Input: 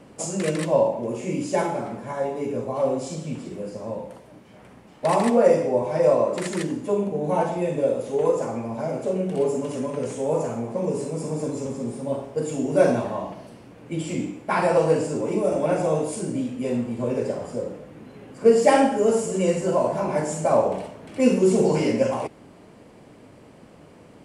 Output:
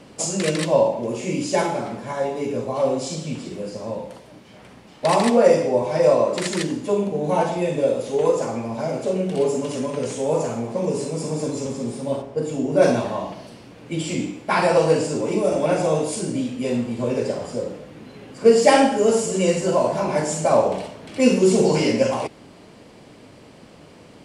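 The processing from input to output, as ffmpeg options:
-filter_complex "[0:a]asplit=3[a][b][c];[a]afade=t=out:st=12.21:d=0.02[d];[b]highshelf=f=2.2k:g=-10,afade=t=in:st=12.21:d=0.02,afade=t=out:st=12.81:d=0.02[e];[c]afade=t=in:st=12.81:d=0.02[f];[d][e][f]amix=inputs=3:normalize=0,equalizer=f=4.3k:w=0.83:g=8,volume=2dB"

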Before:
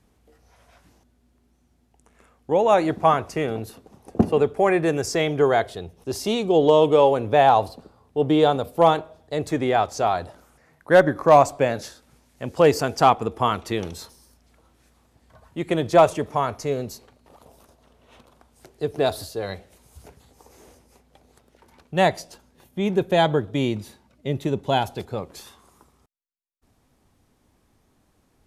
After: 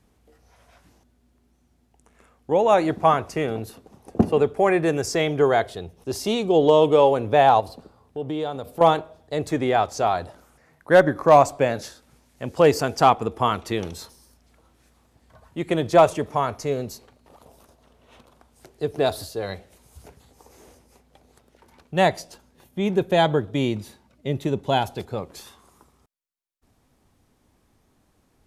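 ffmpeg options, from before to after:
-filter_complex "[0:a]asettb=1/sr,asplit=3[a][b][c];[a]atrim=end=7.604[d];[b]atrim=start=7.6:end=8.81,asetpts=PTS-STARTPTS,afade=t=in:d=0.004:c=qsin,afade=t=out:st=1.206:d=0.004:c=qsin,acompressor=threshold=-32dB:ratio=2:attack=3.2:release=140:knee=1:detection=peak[e];[c]atrim=start=8.806[f];[d][e]acrossfade=d=0.004:c1=hsin:c2=qsin[g];[g][f]acrossfade=d=0.004:c1=qsin:c2=hsin"

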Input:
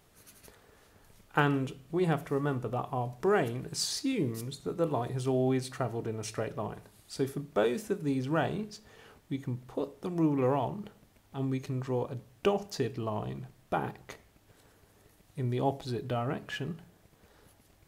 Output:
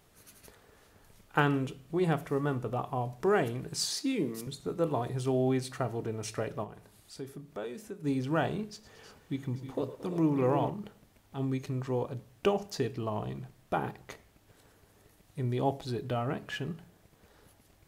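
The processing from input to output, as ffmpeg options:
-filter_complex "[0:a]asettb=1/sr,asplit=3[a][b][c];[a]atrim=end=3.904[d];[b]atrim=start=3.9:end=4.47,asetpts=PTS-STARTPTS,afade=t=in:d=0.004:c=qsin,afade=t=out:st=0.566:d=0.004:c=qsin,highpass=f=160:w=0.5412,highpass=f=160:w=1.3066[e];[c]atrim=start=4.466[f];[d][e]acrossfade=d=0.004:c1=hsin:c2=qsin[g];[g][f]acrossfade=d=0.004:c1=qsin:c2=hsin,asplit=3[h][i][j];[h]afade=t=out:st=6.63:d=0.02[k];[i]acompressor=threshold=-55dB:ratio=1.5:attack=3.2:release=140:knee=1:detection=peak,afade=t=in:st=6.63:d=0.02,afade=t=out:st=8.03:d=0.02[l];[j]afade=t=in:st=8.03:d=0.02[m];[k][l][m]amix=inputs=3:normalize=0,asettb=1/sr,asplit=3[n][o][p];[n]atrim=end=8.724[q];[o]atrim=start=8.72:end=10.7,asetpts=PTS-STARTPTS,afade=t=in:d=0.004:c=qsin,afade=t=out:st=1.976:d=0.004:c=qsin,aecho=1:1:109|111|226|313|347|837:0.141|0.141|0.126|0.237|0.224|0.158,atrim=end_sample=87318[r];[p]atrim=start=10.696[s];[q][r]acrossfade=d=0.004:c1=hsin:c2=qsin[t];[t][s]acrossfade=d=0.004:c1=qsin:c2=hsin"

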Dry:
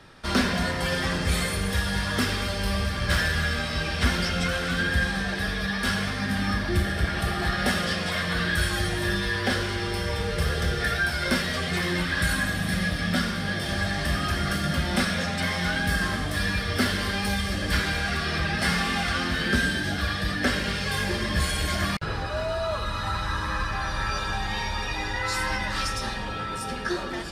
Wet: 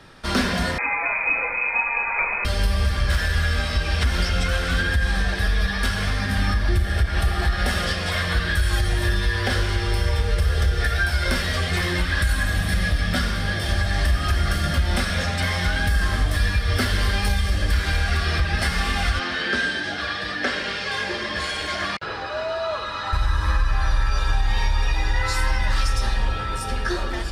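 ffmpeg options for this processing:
-filter_complex "[0:a]asettb=1/sr,asplit=3[a][b][c];[a]atrim=end=0.784[d];[b]atrim=start=0.78:end=2.45,asetpts=PTS-STARTPTS,afade=t=in:d=0.004:c=qsin,afade=t=out:st=1.666:d=0.004:c=qsin,lowpass=f=2.2k:t=q:w=0.5098,lowpass=f=2.2k:t=q:w=0.6013,lowpass=f=2.2k:t=q:w=0.9,lowpass=f=2.2k:t=q:w=2.563,afreqshift=-2600[e];[c]atrim=start=2.446[f];[d][e]acrossfade=d=0.004:c1=hsin:c2=qsin[g];[g][f]acrossfade=d=0.004:c1=qsin:c2=hsin,asettb=1/sr,asplit=3[h][i][j];[h]atrim=end=19.194[k];[i]atrim=start=19.19:end=23.13,asetpts=PTS-STARTPTS,afade=t=in:d=0.004:c=qsin,afade=t=out:st=3.936:d=0.004:c=qsin,highpass=270,lowpass=5.4k[l];[j]atrim=start=23.126[m];[k][l]acrossfade=d=0.004:c1=hsin:c2=qsin[n];[n][m]acrossfade=d=0.004:c1=qsin:c2=hsin,asubboost=boost=7.5:cutoff=61,alimiter=limit=-14.5dB:level=0:latency=1:release=143,volume=3dB"

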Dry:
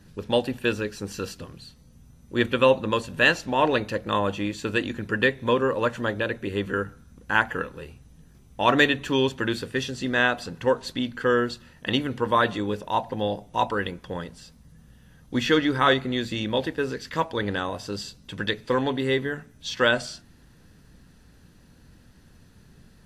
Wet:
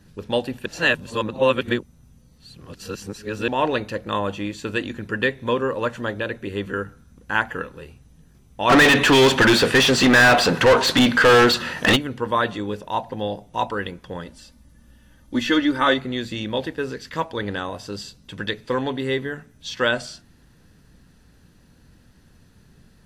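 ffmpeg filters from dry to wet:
-filter_complex "[0:a]asplit=3[a][b][c];[a]afade=t=out:st=8.69:d=0.02[d];[b]asplit=2[e][f];[f]highpass=f=720:p=1,volume=34dB,asoftclip=type=tanh:threshold=-5.5dB[g];[e][g]amix=inputs=2:normalize=0,lowpass=f=2.9k:p=1,volume=-6dB,afade=t=in:st=8.69:d=0.02,afade=t=out:st=11.95:d=0.02[h];[c]afade=t=in:st=11.95:d=0.02[i];[d][h][i]amix=inputs=3:normalize=0,asettb=1/sr,asplit=3[j][k][l];[j]atrim=end=14.264[m];[k]atrim=start=14.26:end=15.98,asetpts=PTS-STARTPTS,afade=t=in:d=0.004:c=qsin,afade=t=out:st=1.716:d=0.004:c=qsin,aecho=1:1:3.4:0.65,atrim=end_sample=75852[n];[l]atrim=start=15.976[o];[m][n]acrossfade=d=0.004:c1=hsin:c2=qsin[p];[p][o]acrossfade=d=0.004:c1=qsin:c2=hsin,asplit=3[q][r][s];[q]atrim=end=0.662[t];[r]atrim=start=0.658:end=3.482,asetpts=PTS-STARTPTS,areverse[u];[s]atrim=start=3.478[v];[t][u]acrossfade=d=0.004:c1=hsin:c2=hsin[w];[w][v]acrossfade=d=0.004:c1=hsin:c2=hsin"

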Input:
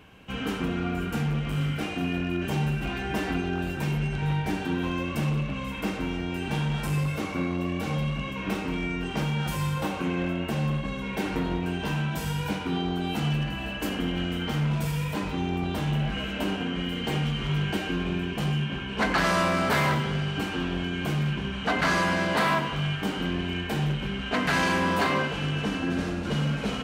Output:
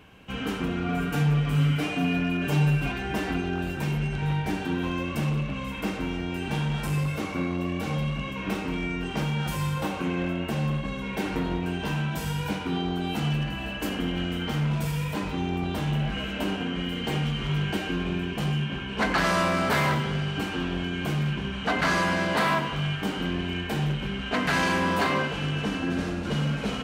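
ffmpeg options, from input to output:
-filter_complex "[0:a]asettb=1/sr,asplit=3[a][b][c];[a]atrim=end=0.884[d];[b]atrim=start=0.88:end=2.92,asetpts=PTS-STARTPTS,afade=t=in:d=0.004:c=qsin,afade=t=out:st=2.036:d=0.004:c=qsin,aecho=1:1:6.9:0.88,atrim=end_sample=89964[e];[c]atrim=start=2.916[f];[d][e]acrossfade=d=0.004:c1=hsin:c2=qsin[g];[g][f]acrossfade=d=0.004:c1=qsin:c2=hsin"

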